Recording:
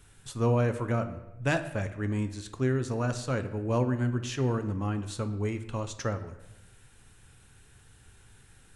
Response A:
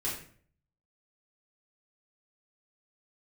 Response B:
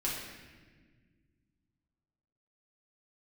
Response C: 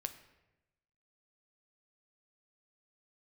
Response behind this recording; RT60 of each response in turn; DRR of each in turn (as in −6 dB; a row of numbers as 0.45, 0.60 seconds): C; 0.50, 1.5, 1.0 seconds; −8.0, −6.0, 8.5 decibels